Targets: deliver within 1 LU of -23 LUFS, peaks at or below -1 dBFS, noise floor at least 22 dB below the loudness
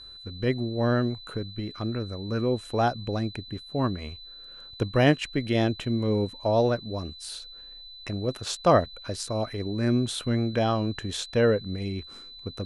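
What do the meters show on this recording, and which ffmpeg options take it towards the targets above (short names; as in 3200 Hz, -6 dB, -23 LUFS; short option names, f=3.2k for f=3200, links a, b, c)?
steady tone 4000 Hz; tone level -43 dBFS; loudness -27.5 LUFS; peak -8.0 dBFS; loudness target -23.0 LUFS
-> -af "bandreject=f=4k:w=30"
-af "volume=4.5dB"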